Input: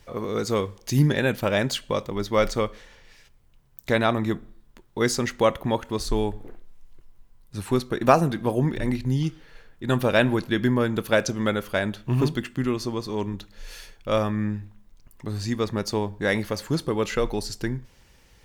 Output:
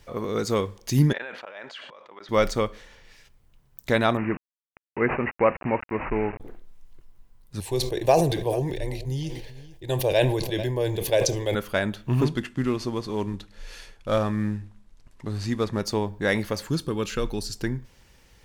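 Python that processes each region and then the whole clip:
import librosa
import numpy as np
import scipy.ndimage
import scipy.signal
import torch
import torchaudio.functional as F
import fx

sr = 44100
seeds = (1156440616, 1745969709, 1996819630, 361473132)

y = fx.chain(x, sr, fx.auto_swell(attack_ms=578.0),
    fx.bandpass_edges(low_hz=740.0, high_hz=2400.0),
    fx.sustainer(db_per_s=46.0), at=(1.13, 2.29))
y = fx.chain(y, sr, fx.low_shelf(hz=120.0, db=-7.5),
    fx.quant_dither(seeds[0], bits=6, dither='none'),
    fx.resample_bad(factor=8, down='none', up='filtered'), at=(4.17, 6.4))
y = fx.chain(y, sr, fx.fixed_phaser(hz=550.0, stages=4),
    fx.echo_single(ms=441, db=-18.5),
    fx.sustainer(db_per_s=47.0), at=(7.6, 11.55))
y = fx.chain(y, sr, fx.cvsd(bps=64000),
    fx.high_shelf(hz=8100.0, db=-10.0), at=(12.23, 15.81))
y = fx.chain(y, sr, fx.peak_eq(hz=700.0, db=-8.0, octaves=1.3),
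    fx.notch(hz=2000.0, q=6.5), at=(16.69, 17.56))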